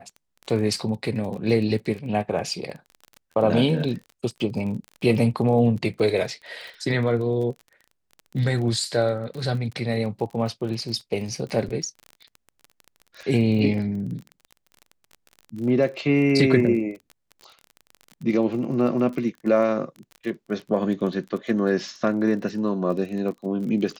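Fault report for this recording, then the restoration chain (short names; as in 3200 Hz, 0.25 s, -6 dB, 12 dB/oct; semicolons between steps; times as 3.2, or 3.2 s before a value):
crackle 26/s -32 dBFS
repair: de-click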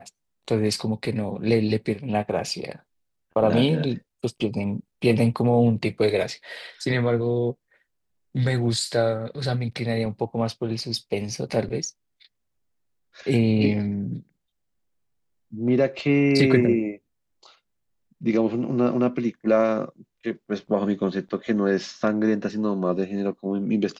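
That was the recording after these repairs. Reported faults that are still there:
none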